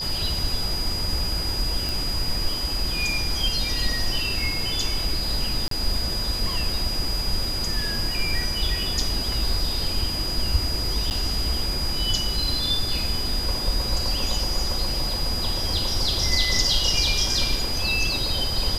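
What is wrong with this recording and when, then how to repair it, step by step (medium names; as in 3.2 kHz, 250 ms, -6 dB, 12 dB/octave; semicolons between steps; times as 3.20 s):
whine 4.9 kHz -27 dBFS
1.89 s: pop
5.68–5.71 s: dropout 33 ms
11.10–11.11 s: dropout 9.3 ms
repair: de-click; band-stop 4.9 kHz, Q 30; interpolate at 5.68 s, 33 ms; interpolate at 11.10 s, 9.3 ms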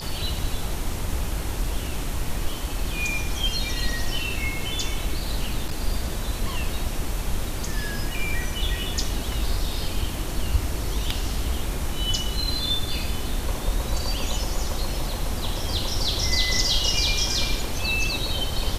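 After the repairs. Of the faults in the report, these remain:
nothing left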